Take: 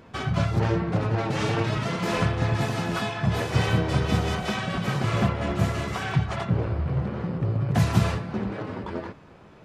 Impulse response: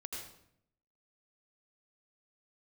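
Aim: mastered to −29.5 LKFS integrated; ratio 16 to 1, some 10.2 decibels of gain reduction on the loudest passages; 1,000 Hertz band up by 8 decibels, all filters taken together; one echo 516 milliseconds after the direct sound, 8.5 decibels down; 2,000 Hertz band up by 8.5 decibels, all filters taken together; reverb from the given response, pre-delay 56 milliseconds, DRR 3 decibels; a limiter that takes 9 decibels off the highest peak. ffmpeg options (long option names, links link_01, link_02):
-filter_complex "[0:a]equalizer=frequency=1000:width_type=o:gain=8,equalizer=frequency=2000:width_type=o:gain=8,acompressor=threshold=-24dB:ratio=16,alimiter=limit=-23dB:level=0:latency=1,aecho=1:1:516:0.376,asplit=2[link_01][link_02];[1:a]atrim=start_sample=2205,adelay=56[link_03];[link_02][link_03]afir=irnorm=-1:irlink=0,volume=-1.5dB[link_04];[link_01][link_04]amix=inputs=2:normalize=0"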